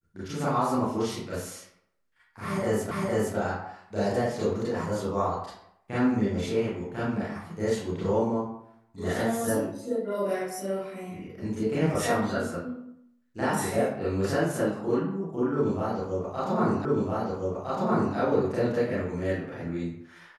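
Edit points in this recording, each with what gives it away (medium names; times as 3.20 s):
2.91 s: repeat of the last 0.46 s
16.85 s: repeat of the last 1.31 s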